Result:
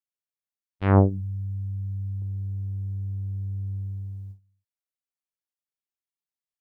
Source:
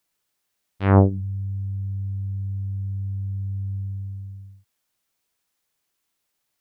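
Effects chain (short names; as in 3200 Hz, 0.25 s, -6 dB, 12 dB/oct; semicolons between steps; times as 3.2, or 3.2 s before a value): gate with hold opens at -27 dBFS; 2.22–4.39 band shelf 560 Hz +13.5 dB; gain -2.5 dB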